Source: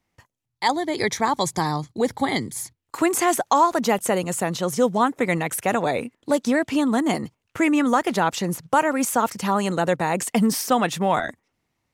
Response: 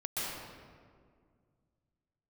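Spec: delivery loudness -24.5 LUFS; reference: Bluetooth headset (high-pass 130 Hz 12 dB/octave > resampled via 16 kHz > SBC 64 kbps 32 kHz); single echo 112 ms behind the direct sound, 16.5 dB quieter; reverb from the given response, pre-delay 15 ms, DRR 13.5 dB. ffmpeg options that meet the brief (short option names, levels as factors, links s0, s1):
-filter_complex "[0:a]aecho=1:1:112:0.15,asplit=2[s0][s1];[1:a]atrim=start_sample=2205,adelay=15[s2];[s1][s2]afir=irnorm=-1:irlink=0,volume=0.112[s3];[s0][s3]amix=inputs=2:normalize=0,highpass=130,aresample=16000,aresample=44100,volume=0.794" -ar 32000 -c:a sbc -b:a 64k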